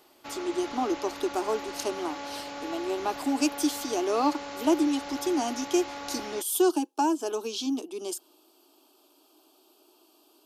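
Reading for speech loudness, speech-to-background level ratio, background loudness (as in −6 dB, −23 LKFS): −29.0 LKFS, 9.5 dB, −38.5 LKFS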